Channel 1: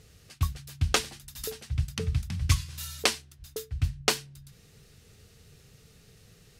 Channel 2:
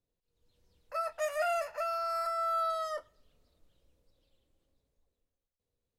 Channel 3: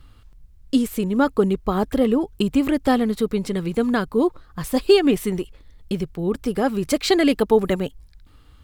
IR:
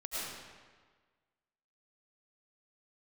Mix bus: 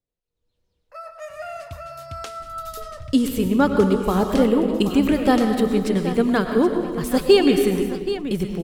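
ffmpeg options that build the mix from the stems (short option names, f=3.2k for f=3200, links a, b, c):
-filter_complex "[0:a]acompressor=threshold=-34dB:ratio=3,adelay=1300,volume=-2.5dB,asplit=2[a][b];[b]volume=-23.5dB[c];[1:a]highshelf=f=8k:g=-7.5,volume=-4.5dB,asplit=2[d][e];[e]volume=-9dB[f];[2:a]adelay=2400,volume=-1.5dB,asplit=3[g][h][i];[h]volume=-5.5dB[j];[i]volume=-10dB[k];[3:a]atrim=start_sample=2205[l];[f][j]amix=inputs=2:normalize=0[m];[m][l]afir=irnorm=-1:irlink=0[n];[c][k]amix=inputs=2:normalize=0,aecho=0:1:777|1554|2331|3108|3885:1|0.32|0.102|0.0328|0.0105[o];[a][d][g][n][o]amix=inputs=5:normalize=0"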